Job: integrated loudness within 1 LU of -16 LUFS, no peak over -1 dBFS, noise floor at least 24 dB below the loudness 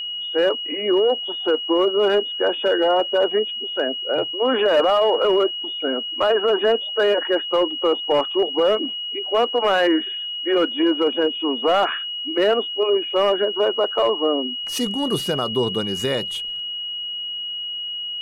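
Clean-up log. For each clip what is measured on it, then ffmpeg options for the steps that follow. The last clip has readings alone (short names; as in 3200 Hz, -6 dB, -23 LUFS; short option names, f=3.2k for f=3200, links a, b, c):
steady tone 2900 Hz; tone level -26 dBFS; loudness -20.5 LUFS; peak -10.5 dBFS; loudness target -16.0 LUFS
-> -af "bandreject=f=2.9k:w=30"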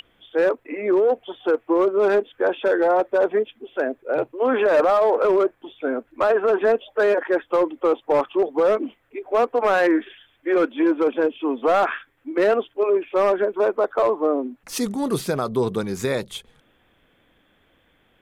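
steady tone none; loudness -21.5 LUFS; peak -11.5 dBFS; loudness target -16.0 LUFS
-> -af "volume=5.5dB"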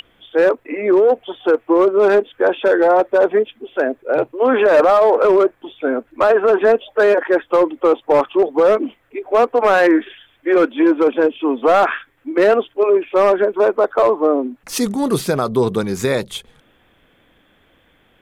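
loudness -16.0 LUFS; peak -6.0 dBFS; noise floor -57 dBFS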